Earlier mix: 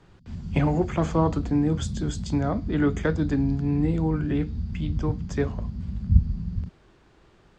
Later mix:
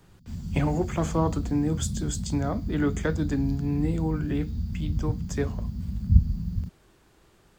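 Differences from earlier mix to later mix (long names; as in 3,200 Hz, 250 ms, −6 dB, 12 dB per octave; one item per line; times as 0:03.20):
speech −3.0 dB
master: remove high-frequency loss of the air 110 metres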